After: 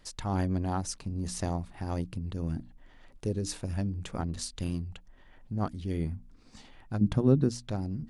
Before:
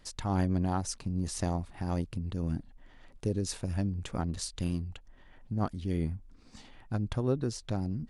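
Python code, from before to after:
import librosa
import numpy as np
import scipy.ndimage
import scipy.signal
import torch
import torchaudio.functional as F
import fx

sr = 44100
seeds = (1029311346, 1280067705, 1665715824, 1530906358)

y = fx.hum_notches(x, sr, base_hz=60, count=5)
y = fx.peak_eq(y, sr, hz=190.0, db=13.0, octaves=1.4, at=(7.01, 7.49))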